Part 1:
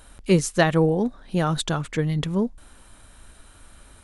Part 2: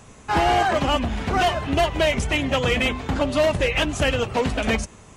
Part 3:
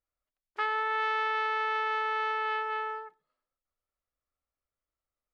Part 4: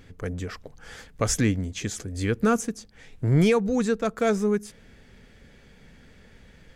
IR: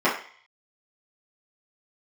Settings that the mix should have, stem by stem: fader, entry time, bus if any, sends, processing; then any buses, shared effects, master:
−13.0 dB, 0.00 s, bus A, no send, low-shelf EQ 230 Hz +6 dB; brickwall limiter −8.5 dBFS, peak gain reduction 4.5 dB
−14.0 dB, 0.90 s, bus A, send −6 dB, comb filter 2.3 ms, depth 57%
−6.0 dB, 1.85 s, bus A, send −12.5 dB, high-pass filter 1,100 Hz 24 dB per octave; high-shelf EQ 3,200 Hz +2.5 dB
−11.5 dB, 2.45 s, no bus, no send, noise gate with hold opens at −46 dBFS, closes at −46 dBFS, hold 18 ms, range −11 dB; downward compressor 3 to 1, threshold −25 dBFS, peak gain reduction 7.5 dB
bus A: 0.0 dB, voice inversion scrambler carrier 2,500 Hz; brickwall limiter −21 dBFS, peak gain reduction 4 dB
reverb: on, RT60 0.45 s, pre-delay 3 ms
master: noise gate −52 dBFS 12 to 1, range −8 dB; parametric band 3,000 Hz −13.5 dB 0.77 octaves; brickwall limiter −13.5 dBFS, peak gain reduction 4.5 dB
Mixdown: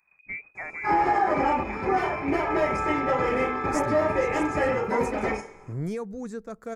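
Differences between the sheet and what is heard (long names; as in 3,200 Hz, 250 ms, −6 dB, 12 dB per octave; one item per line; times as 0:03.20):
stem 2: entry 0.90 s → 0.55 s
stem 3: missing high-pass filter 1,100 Hz 24 dB per octave
stem 4: missing downward compressor 3 to 1, threshold −25 dBFS, peak gain reduction 7.5 dB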